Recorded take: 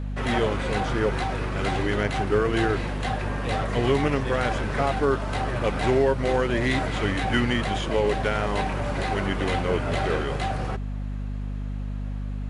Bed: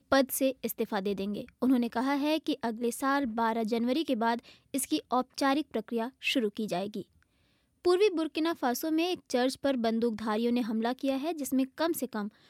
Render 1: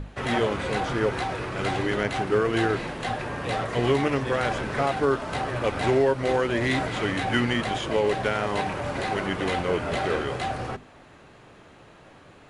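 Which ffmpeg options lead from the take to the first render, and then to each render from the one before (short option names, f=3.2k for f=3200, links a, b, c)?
-af "bandreject=f=50:t=h:w=6,bandreject=f=100:t=h:w=6,bandreject=f=150:t=h:w=6,bandreject=f=200:t=h:w=6,bandreject=f=250:t=h:w=6"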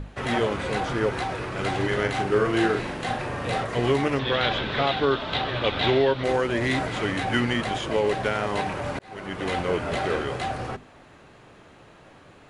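-filter_complex "[0:a]asettb=1/sr,asplit=3[a][b][c];[a]atrim=end=1.764[d];[b]atrim=start=1.76:end=3.63,asetpts=PTS-STARTPTS,afade=t=in:d=0.004:c=qsin,afade=t=out:st=1.866:d=0.004:c=qsin,asplit=2[e][f];[f]adelay=41,volume=-5dB[g];[e][g]amix=inputs=2:normalize=0,atrim=end_sample=82467[h];[c]atrim=start=3.626[i];[d][h]acrossfade=d=0.004:c1=hsin:c2=qsin[j];[j][i]acrossfade=d=0.004:c1=qsin:c2=hsin,asettb=1/sr,asplit=3[k][l][m];[k]atrim=end=4.194[n];[l]atrim=start=4.19:end=6.24,asetpts=PTS-STARTPTS,afade=t=in:d=0.004:c=qsin,afade=t=out:st=2.046:d=0.004:c=qsin,lowpass=f=3.6k:t=q:w=5.6[o];[m]atrim=start=6.236[p];[n][o]acrossfade=d=0.004:c1=hsin:c2=qsin[q];[q][p]acrossfade=d=0.004:c1=qsin:c2=hsin,asplit=2[r][s];[r]atrim=end=8.99,asetpts=PTS-STARTPTS,afade=t=out:st=8.986:d=0.004:c=hsin[t];[s]atrim=start=8.99,asetpts=PTS-STARTPTS,afade=t=in:d=0.58[u];[t][u]concat=n=2:v=0:a=1"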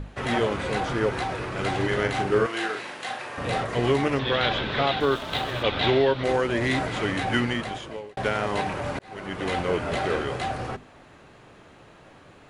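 -filter_complex "[0:a]asettb=1/sr,asplit=3[a][b][c];[a]atrim=end=2.464[d];[b]atrim=start=2.46:end=3.38,asetpts=PTS-STARTPTS,afade=t=in:d=0.004:c=qsin,afade=t=out:st=0.916:d=0.004:c=qsin,highpass=f=1.1k:p=1[e];[c]atrim=start=3.376[f];[d][e]acrossfade=d=0.004:c1=hsin:c2=qsin[g];[g][f]acrossfade=d=0.004:c1=qsin:c2=hsin,asettb=1/sr,asplit=3[h][i][j];[h]atrim=end=5.004[k];[i]atrim=start=5:end=5.63,asetpts=PTS-STARTPTS,afade=t=in:d=0.004:c=qsin,afade=t=out:st=0.626:d=0.004:c=qsin,aeval=exprs='sgn(val(0))*max(abs(val(0))-0.00841,0)':c=same[l];[j]atrim=start=5.626[m];[k][l]acrossfade=d=0.004:c1=hsin:c2=qsin[n];[n][m]acrossfade=d=0.004:c1=qsin:c2=hsin,asplit=2[o][p];[o]atrim=end=8.17,asetpts=PTS-STARTPTS,afade=t=out:st=7.35:d=0.82[q];[p]atrim=start=8.17,asetpts=PTS-STARTPTS,afade=t=in:d=0.004:c=hsin[r];[q][r]concat=n=2:v=0:a=1"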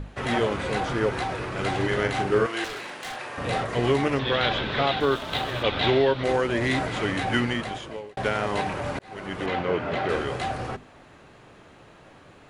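-filter_complex "[0:a]asettb=1/sr,asplit=3[a][b][c];[a]atrim=end=2.644[d];[b]atrim=start=2.64:end=3.16,asetpts=PTS-STARTPTS,afade=t=in:d=0.004:c=qsin,afade=t=out:st=0.516:d=0.004:c=qsin,aeval=exprs='0.0355*(abs(mod(val(0)/0.0355+3,4)-2)-1)':c=same[e];[c]atrim=start=3.156[f];[d][e]acrossfade=d=0.004:c1=hsin:c2=qsin[g];[g][f]acrossfade=d=0.004:c1=qsin:c2=hsin,asettb=1/sr,asplit=3[h][i][j];[h]atrim=end=9.464[k];[i]atrim=start=9.46:end=10.09,asetpts=PTS-STARTPTS,afade=t=in:d=0.004:c=qsin,afade=t=out:st=0.626:d=0.004:c=qsin,highpass=100,lowpass=3.5k[l];[j]atrim=start=10.086[m];[k][l]acrossfade=d=0.004:c1=hsin:c2=qsin[n];[n][m]acrossfade=d=0.004:c1=qsin:c2=hsin"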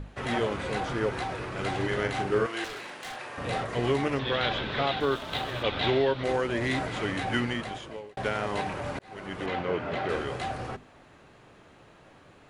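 -af "volume=-4dB"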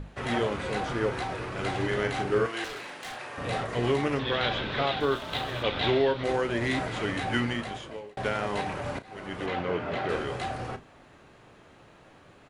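-filter_complex "[0:a]asplit=2[a][b];[b]adelay=34,volume=-12.5dB[c];[a][c]amix=inputs=2:normalize=0"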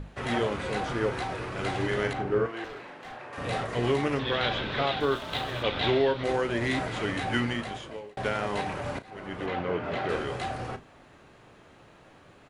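-filter_complex "[0:a]asettb=1/sr,asplit=3[a][b][c];[a]atrim=end=2.134[d];[b]atrim=start=2.13:end=3.33,asetpts=PTS-STARTPTS,afade=t=in:d=0.004:c=qsin,afade=t=out:st=1.196:d=0.004:c=qsin,lowpass=f=1.2k:p=1[e];[c]atrim=start=3.326[f];[d][e]acrossfade=d=0.004:c1=hsin:c2=qsin[g];[g][f]acrossfade=d=0.004:c1=qsin:c2=hsin,asettb=1/sr,asplit=3[h][i][j];[h]atrim=end=9.104[k];[i]atrim=start=9.1:end=9.84,asetpts=PTS-STARTPTS,afade=t=in:d=0.004:c=qsin,afade=t=out:st=0.736:d=0.004:c=qsin,highshelf=f=3.7k:g=-6.5[l];[j]atrim=start=9.836[m];[k][l]acrossfade=d=0.004:c1=hsin:c2=qsin[n];[n][m]acrossfade=d=0.004:c1=qsin:c2=hsin"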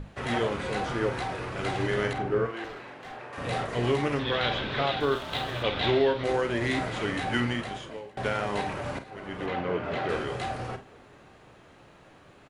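-filter_complex "[0:a]asplit=2[a][b];[b]adelay=49,volume=-12dB[c];[a][c]amix=inputs=2:normalize=0,asplit=2[d][e];[e]adelay=816.3,volume=-27dB,highshelf=f=4k:g=-18.4[f];[d][f]amix=inputs=2:normalize=0"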